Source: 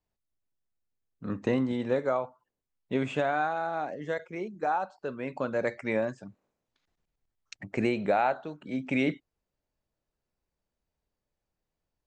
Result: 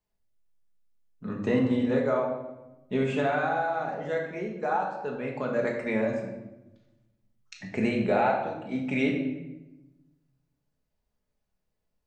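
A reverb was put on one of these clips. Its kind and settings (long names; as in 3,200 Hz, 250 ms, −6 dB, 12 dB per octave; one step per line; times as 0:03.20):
rectangular room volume 420 cubic metres, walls mixed, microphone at 1.4 metres
level −1.5 dB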